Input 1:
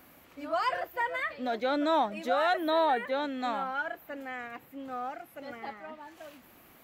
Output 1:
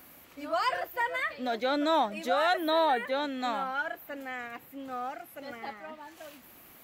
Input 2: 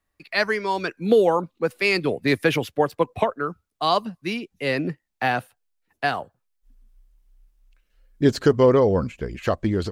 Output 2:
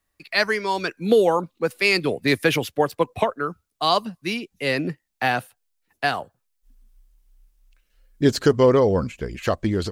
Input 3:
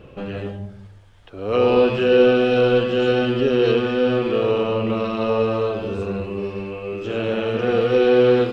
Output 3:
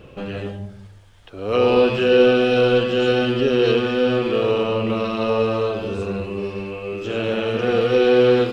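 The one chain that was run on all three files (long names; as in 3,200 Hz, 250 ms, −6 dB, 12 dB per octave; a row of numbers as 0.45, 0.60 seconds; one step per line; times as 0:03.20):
high-shelf EQ 3,400 Hz +6.5 dB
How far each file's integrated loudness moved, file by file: +0.5, +0.5, +0.5 LU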